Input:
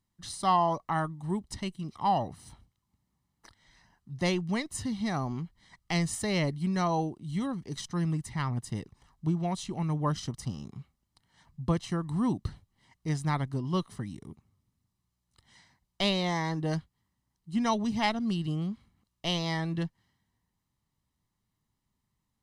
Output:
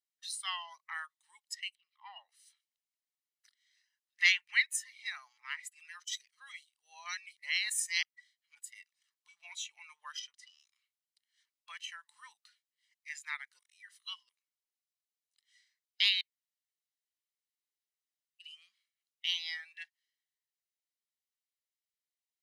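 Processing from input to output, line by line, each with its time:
1.75–2.29 s: distance through air 420 m
4.13–4.76 s: peaking EQ 1.9 kHz +9 dB 1.2 oct
5.38–8.55 s: reverse
10.19–10.60 s: distance through air 60 m
13.59–14.29 s: reverse
16.21–18.40 s: room tone
19.26–19.71 s: peaking EQ 2 kHz -4.5 dB 2.8 oct
whole clip: inverse Chebyshev high-pass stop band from 330 Hz, stop band 80 dB; spectral noise reduction 15 dB; dynamic bell 6 kHz, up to -4 dB, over -52 dBFS, Q 0.76; trim +6 dB

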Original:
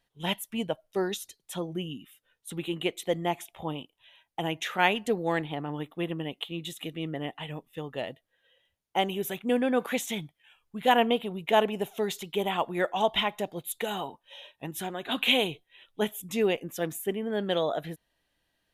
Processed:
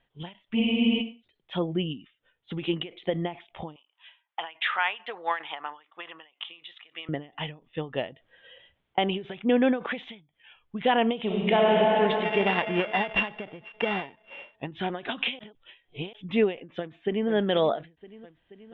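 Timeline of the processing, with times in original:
0.58 s: spectral freeze 0.61 s
3.76–7.09 s: resonant high-pass 1.1 kHz, resonance Q 1.7
8.07–8.98 s: compressor with a negative ratio -44 dBFS, ratio -0.5
11.22–11.68 s: reverb throw, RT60 3 s, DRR -3.5 dB
12.23–14.55 s: sorted samples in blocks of 16 samples
15.39–16.13 s: reverse
16.79–17.29 s: echo throw 480 ms, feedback 75%, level -17.5 dB
whole clip: Chebyshev low-pass 3.4 kHz, order 5; peak limiter -19 dBFS; endings held to a fixed fall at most 180 dB/s; trim +6 dB

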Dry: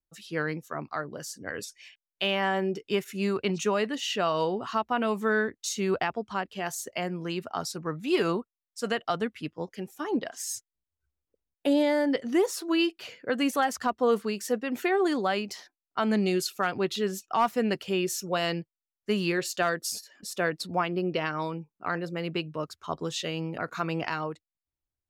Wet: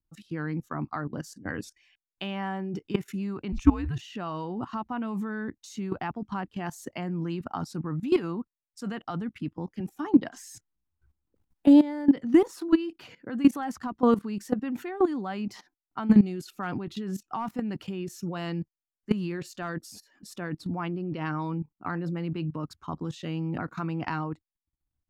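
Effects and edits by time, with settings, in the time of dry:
3.52–4.01 s: frequency shift -140 Hz
9.80–12.58 s: three bands compressed up and down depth 40%
whole clip: tilt shelf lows +8 dB, about 1.2 kHz; level held to a coarse grid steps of 17 dB; high-order bell 510 Hz -9.5 dB 1 oct; trim +4.5 dB

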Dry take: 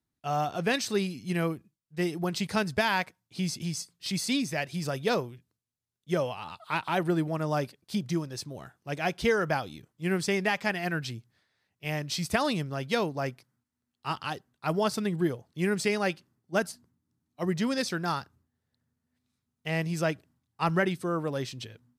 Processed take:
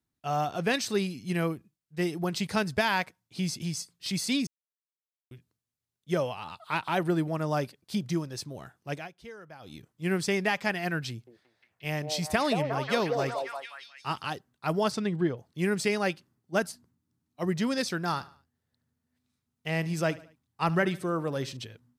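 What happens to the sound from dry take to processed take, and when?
4.47–5.31 s: mute
8.92–9.75 s: dip -20 dB, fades 0.16 s
11.09–14.25 s: repeats whose band climbs or falls 178 ms, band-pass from 570 Hz, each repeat 0.7 oct, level 0 dB
14.91–15.36 s: low-pass 8 kHz -> 3.4 kHz
18.05–21.57 s: feedback delay 73 ms, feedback 43%, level -19 dB

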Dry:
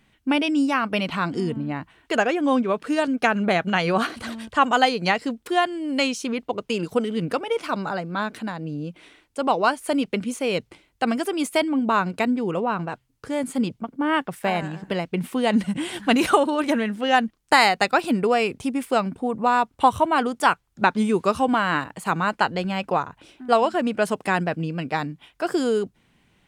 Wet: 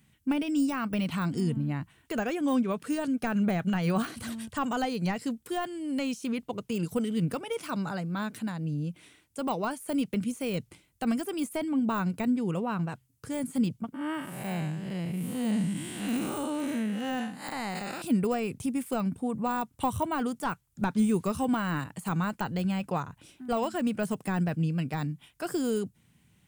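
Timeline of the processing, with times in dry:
13.94–18.02 s: spectral blur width 196 ms
whole clip: high-pass 80 Hz; de-esser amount 95%; FFT filter 140 Hz 0 dB, 360 Hz -11 dB, 690 Hz -13 dB, 4.4 kHz -8 dB, 7.9 kHz 0 dB, 12 kHz +3 dB; trim +3 dB

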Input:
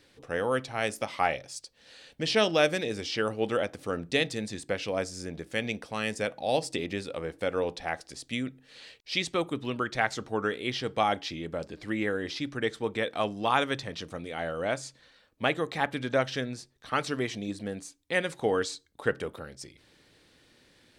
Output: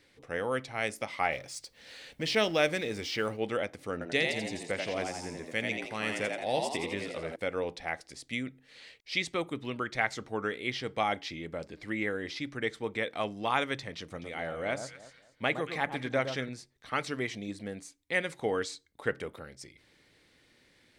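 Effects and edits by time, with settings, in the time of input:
1.32–3.37 s: companding laws mixed up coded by mu
3.92–7.36 s: frequency-shifting echo 85 ms, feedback 48%, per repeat +79 Hz, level -4 dB
13.99–16.49 s: echo whose repeats swap between lows and highs 113 ms, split 1.3 kHz, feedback 51%, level -8 dB
whole clip: peaking EQ 2.1 kHz +7.5 dB 0.27 oct; trim -4 dB

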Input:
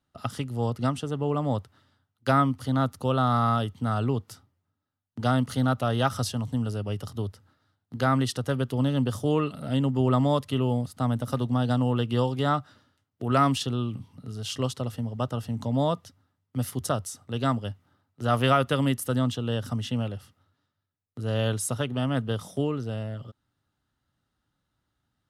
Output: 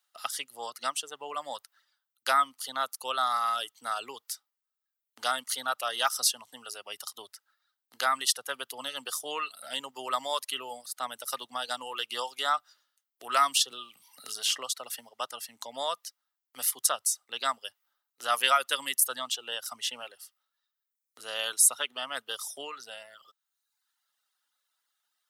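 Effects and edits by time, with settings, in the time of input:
13.71–15.09 s: three bands compressed up and down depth 70%
whole clip: reverb removal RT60 0.94 s; high-pass 730 Hz 12 dB/octave; tilt EQ +3.5 dB/octave

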